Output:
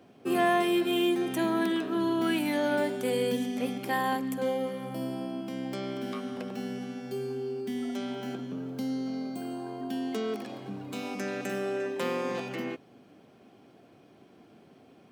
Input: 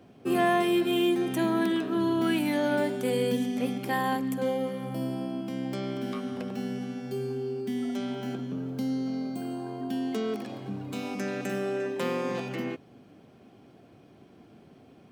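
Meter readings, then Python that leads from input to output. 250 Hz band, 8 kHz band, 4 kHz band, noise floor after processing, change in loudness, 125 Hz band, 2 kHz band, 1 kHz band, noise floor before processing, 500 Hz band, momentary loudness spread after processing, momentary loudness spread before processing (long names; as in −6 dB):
−2.0 dB, 0.0 dB, 0.0 dB, −57 dBFS, −1.5 dB, −5.0 dB, 0.0 dB, −0.5 dB, −55 dBFS, −1.0 dB, 10 LU, 10 LU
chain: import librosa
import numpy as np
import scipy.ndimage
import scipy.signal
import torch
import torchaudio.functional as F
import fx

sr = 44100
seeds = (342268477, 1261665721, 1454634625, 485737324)

y = fx.low_shelf(x, sr, hz=130.0, db=-11.5)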